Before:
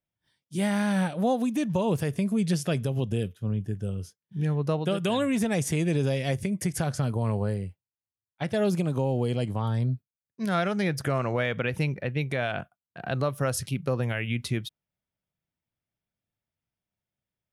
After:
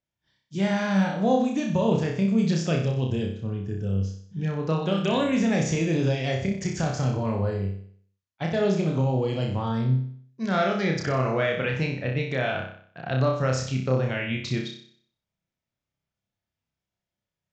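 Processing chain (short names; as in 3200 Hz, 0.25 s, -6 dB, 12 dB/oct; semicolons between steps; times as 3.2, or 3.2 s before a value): on a send: flutter echo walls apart 5.3 m, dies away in 0.56 s; on the sum: downsampling 16000 Hz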